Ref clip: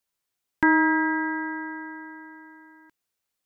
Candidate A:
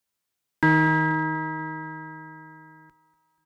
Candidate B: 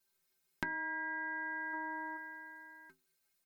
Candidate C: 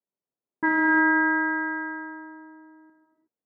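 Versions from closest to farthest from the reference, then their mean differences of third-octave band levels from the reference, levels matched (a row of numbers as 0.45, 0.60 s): C, B, A; 2.5, 4.5, 6.5 dB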